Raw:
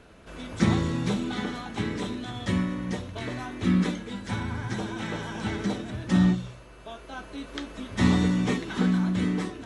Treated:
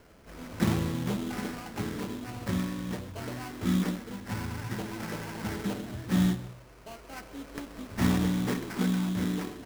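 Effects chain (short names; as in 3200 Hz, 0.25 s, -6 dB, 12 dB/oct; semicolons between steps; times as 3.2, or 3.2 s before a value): echo 0.129 s -15.5 dB; sample-rate reducer 3600 Hz, jitter 20%; gain -4 dB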